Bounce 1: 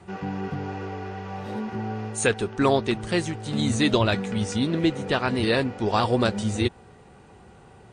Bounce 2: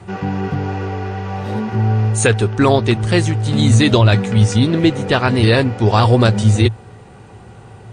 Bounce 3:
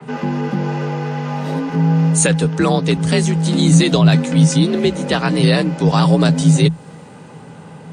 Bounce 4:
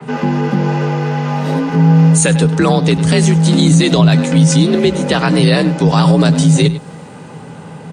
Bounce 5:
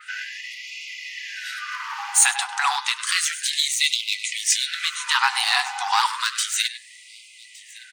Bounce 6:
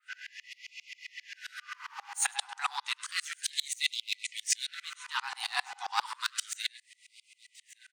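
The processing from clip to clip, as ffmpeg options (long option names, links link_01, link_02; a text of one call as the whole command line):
ffmpeg -i in.wav -af "equalizer=frequency=110:width=4.8:gain=12,alimiter=level_in=9.5dB:limit=-1dB:release=50:level=0:latency=1,volume=-1dB" out.wav
ffmpeg -i in.wav -filter_complex "[0:a]acrossover=split=140[link_01][link_02];[link_02]acompressor=threshold=-26dB:ratio=1.5[link_03];[link_01][link_03]amix=inputs=2:normalize=0,afreqshift=53,adynamicequalizer=threshold=0.01:dfrequency=4000:dqfactor=0.7:tfrequency=4000:tqfactor=0.7:attack=5:release=100:ratio=0.375:range=3.5:mode=boostabove:tftype=highshelf,volume=2dB" out.wav
ffmpeg -i in.wav -filter_complex "[0:a]asplit=2[link_01][link_02];[link_02]adelay=99.13,volume=-17dB,highshelf=frequency=4000:gain=-2.23[link_03];[link_01][link_03]amix=inputs=2:normalize=0,alimiter=level_in=6dB:limit=-1dB:release=50:level=0:latency=1,volume=-1dB" out.wav
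ffmpeg -i in.wav -af "asoftclip=type=hard:threshold=-6.5dB,aecho=1:1:1164:0.0841,afftfilt=real='re*gte(b*sr/1024,690*pow(2000/690,0.5+0.5*sin(2*PI*0.31*pts/sr)))':imag='im*gte(b*sr/1024,690*pow(2000/690,0.5+0.5*sin(2*PI*0.31*pts/sr)))':win_size=1024:overlap=0.75" out.wav
ffmpeg -i in.wav -af "aeval=exprs='val(0)*pow(10,-30*if(lt(mod(-7.5*n/s,1),2*abs(-7.5)/1000),1-mod(-7.5*n/s,1)/(2*abs(-7.5)/1000),(mod(-7.5*n/s,1)-2*abs(-7.5)/1000)/(1-2*abs(-7.5)/1000))/20)':channel_layout=same,volume=-4.5dB" out.wav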